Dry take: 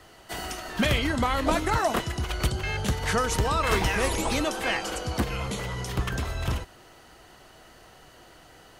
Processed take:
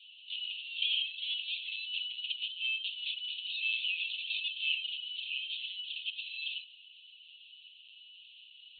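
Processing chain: Chebyshev high-pass 2600 Hz, order 8; compressor 2:1, threshold -40 dBFS, peak gain reduction 7 dB; LPC vocoder at 8 kHz pitch kept; gain +8 dB

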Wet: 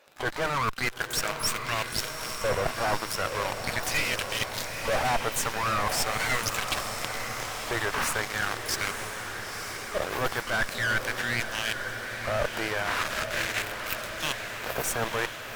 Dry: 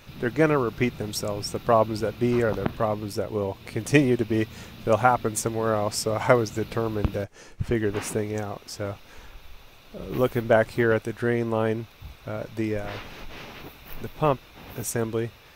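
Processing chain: LFO high-pass saw up 0.41 Hz 550–5100 Hz; sample leveller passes 5; one-sided clip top -19 dBFS, bottom -4 dBFS; harmoniser +12 st -12 dB; bell 1600 Hz +4.5 dB 0.45 oct; limiter -9.5 dBFS, peak gain reduction 8.5 dB; low shelf 480 Hz +6 dB; reverse; compressor 5:1, threshold -24 dBFS, peak gain reduction 12 dB; reverse; diffused feedback echo 0.937 s, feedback 67%, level -7 dB; gain -1.5 dB

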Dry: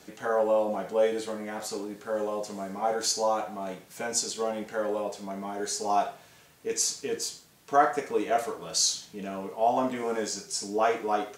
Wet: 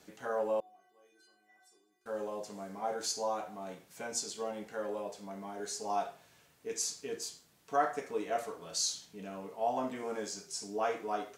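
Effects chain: 0.6–2.06 metallic resonator 360 Hz, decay 0.64 s, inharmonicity 0.008; gain -8 dB

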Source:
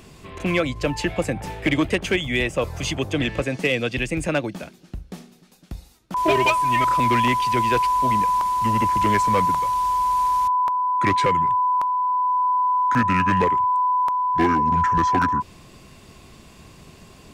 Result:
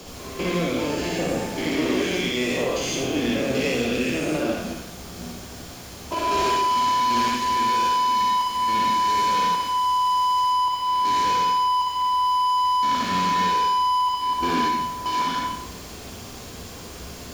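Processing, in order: stepped spectrum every 0.2 s; HPF 170 Hz 24 dB/oct; 14.33–15.06 gate with hold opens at -12 dBFS; added noise pink -44 dBFS; hard clip -25 dBFS, distortion -9 dB; reverb RT60 0.65 s, pre-delay 49 ms, DRR -1.5 dB

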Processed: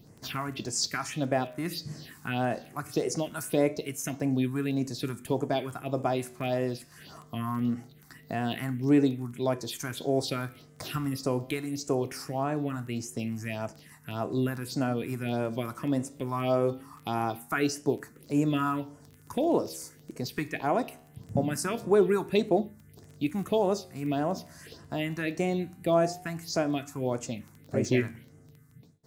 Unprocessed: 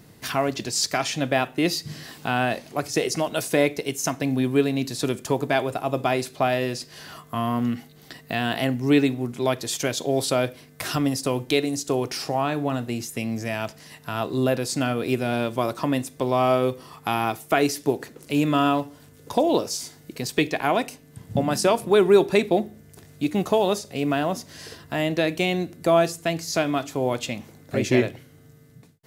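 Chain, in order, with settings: phaser stages 4, 1.7 Hz, lowest notch 500–3700 Hz; crackle 12/s -34 dBFS; flange 0.22 Hz, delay 7.4 ms, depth 9.3 ms, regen -87%

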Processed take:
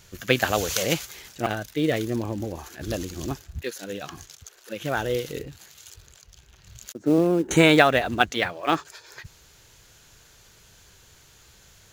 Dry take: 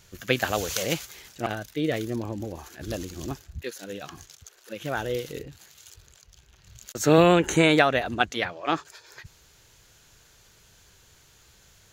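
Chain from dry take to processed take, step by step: 6.93–7.51 band-pass 280 Hz, Q 2.1; in parallel at -4.5 dB: short-mantissa float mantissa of 2-bit; on the sum: gain -1 dB

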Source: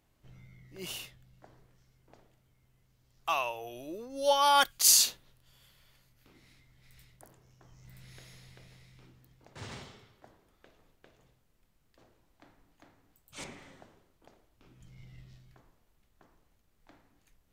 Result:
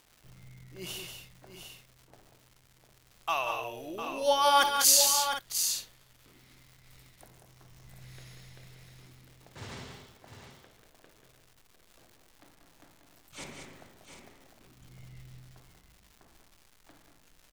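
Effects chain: tapped delay 60/140/188/212/703/754 ms -14.5/-14.5/-7/-12.5/-9.5/-12.5 dB; crackle 360/s -47 dBFS

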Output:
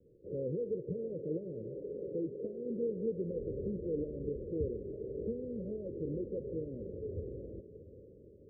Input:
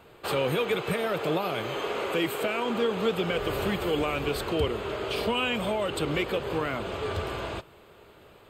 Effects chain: steep low-pass 540 Hz 96 dB/oct; diffused feedback echo 0.675 s, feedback 57%, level -14.5 dB; gain -8 dB

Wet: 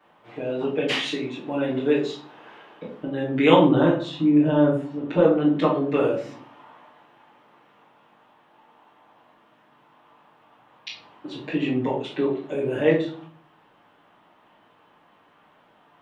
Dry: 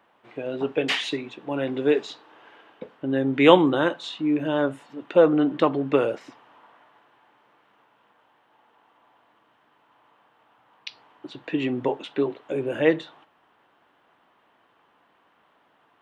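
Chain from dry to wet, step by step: in parallel at +1 dB: compressor, threshold -34 dBFS, peak gain reduction 23.5 dB; 3.63–5.19 on the sum: tilt -2 dB/oct; reverb RT60 0.50 s, pre-delay 7 ms, DRR -9 dB; gain -11.5 dB

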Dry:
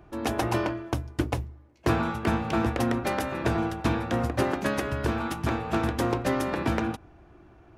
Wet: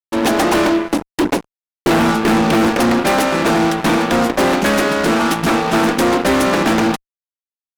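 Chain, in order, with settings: FFT band-pass 150–12000 Hz; 0.7–2.7 dynamic EQ 300 Hz, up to +5 dB, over -37 dBFS, Q 0.77; fuzz box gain 32 dB, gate -40 dBFS; gain +2 dB

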